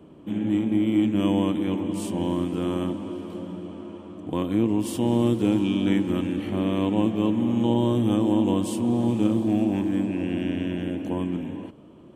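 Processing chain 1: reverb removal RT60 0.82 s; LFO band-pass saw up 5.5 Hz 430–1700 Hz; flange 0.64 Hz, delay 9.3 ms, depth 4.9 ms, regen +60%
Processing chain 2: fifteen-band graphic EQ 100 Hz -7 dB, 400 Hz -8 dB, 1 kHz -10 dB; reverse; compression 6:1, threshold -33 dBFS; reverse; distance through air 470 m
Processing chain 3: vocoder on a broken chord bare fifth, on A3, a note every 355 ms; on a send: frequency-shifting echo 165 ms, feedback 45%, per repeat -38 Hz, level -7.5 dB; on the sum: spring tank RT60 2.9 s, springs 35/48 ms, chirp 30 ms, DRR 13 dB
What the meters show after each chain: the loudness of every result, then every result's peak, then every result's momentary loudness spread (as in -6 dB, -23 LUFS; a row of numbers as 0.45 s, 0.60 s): -43.0 LUFS, -38.0 LUFS, -24.5 LUFS; -24.0 dBFS, -25.5 dBFS, -10.5 dBFS; 13 LU, 4 LU, 13 LU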